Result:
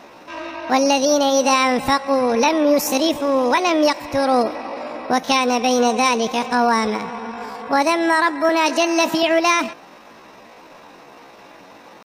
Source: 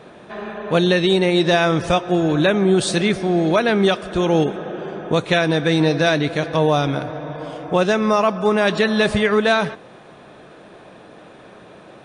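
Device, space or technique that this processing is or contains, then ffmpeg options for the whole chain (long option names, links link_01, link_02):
chipmunk voice: -filter_complex "[0:a]asetrate=68011,aresample=44100,atempo=0.64842,asettb=1/sr,asplit=3[link_01][link_02][link_03];[link_01]atrim=end=8.494[link_04];[link_02]atrim=start=8.49:end=9.23,asetpts=PTS-STARTPTS,afade=type=in:duration=0.004:curve=qsin,afade=type=out:start_time=0.736:duration=0.004:curve=qsin,highpass=frequency=190:width=0.5412,highpass=frequency=190:width=1.3066[link_05];[link_03]atrim=start=9.226[link_06];[link_04][link_05]acrossfade=duration=0.004:curve1=hsin:curve2=qsin[link_07];[link_07][link_06]acrossfade=duration=0.004:curve1=qsin:curve2=hsin"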